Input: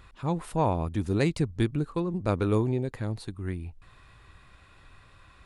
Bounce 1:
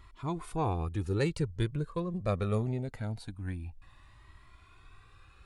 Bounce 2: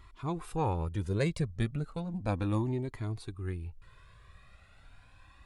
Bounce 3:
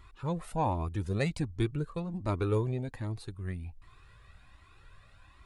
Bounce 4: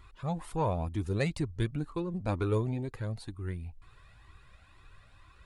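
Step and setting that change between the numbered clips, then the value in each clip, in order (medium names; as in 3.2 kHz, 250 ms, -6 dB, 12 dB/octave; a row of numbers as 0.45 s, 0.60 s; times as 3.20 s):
Shepard-style flanger, rate: 0.23 Hz, 0.35 Hz, 1.3 Hz, 2.1 Hz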